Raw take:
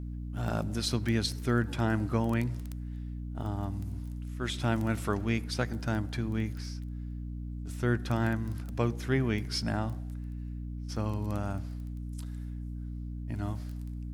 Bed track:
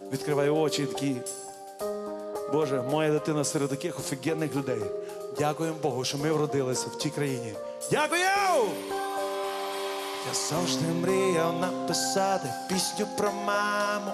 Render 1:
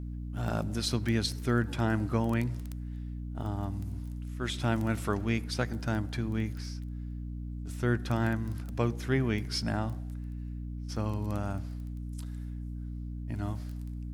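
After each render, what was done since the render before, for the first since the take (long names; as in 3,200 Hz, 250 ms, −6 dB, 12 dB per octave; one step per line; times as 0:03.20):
no processing that can be heard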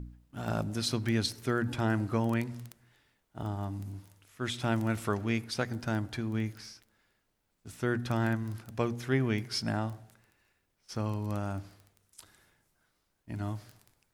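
hum removal 60 Hz, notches 5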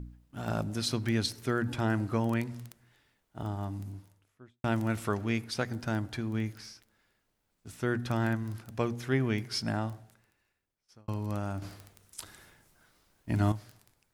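0:03.77–0:04.64: fade out and dull
0:09.90–0:11.08: fade out
0:11.62–0:13.52: clip gain +9 dB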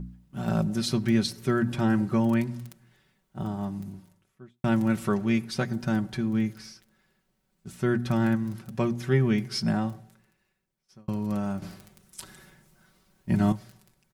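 parametric band 150 Hz +8 dB 1.8 octaves
comb filter 5.3 ms, depth 67%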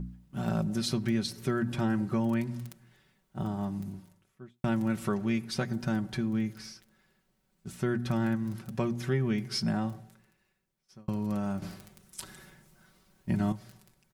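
downward compressor 2 to 1, threshold −29 dBFS, peak gain reduction 7 dB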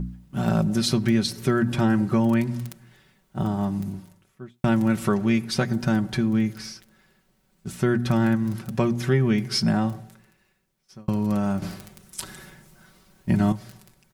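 level +8 dB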